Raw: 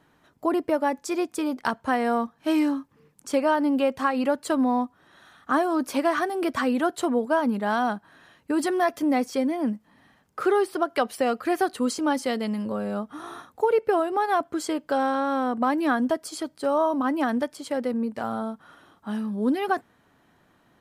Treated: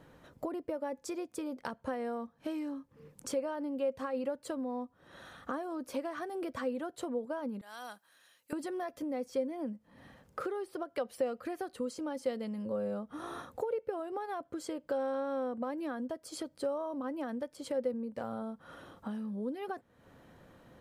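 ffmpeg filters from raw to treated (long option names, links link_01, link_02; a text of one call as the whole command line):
ffmpeg -i in.wav -filter_complex "[0:a]asettb=1/sr,asplit=3[link_01][link_02][link_03];[link_01]atrim=end=7.614[link_04];[link_02]atrim=start=7.61:end=8.53,asetpts=PTS-STARTPTS,afade=type=in:duration=0.004:curve=qsin,afade=type=out:start_time=0.916:duration=0.004:curve=qsin,aderivative[link_05];[link_03]atrim=start=8.526[link_06];[link_04][link_05]acrossfade=duration=0.004:curve1=hsin:curve2=qsin[link_07];[link_07][link_06]acrossfade=duration=0.004:curve1=qsin:curve2=hsin,lowshelf=frequency=200:gain=9,acompressor=threshold=-39dB:ratio=5,equalizer=frequency=520:width=5.1:gain=12" out.wav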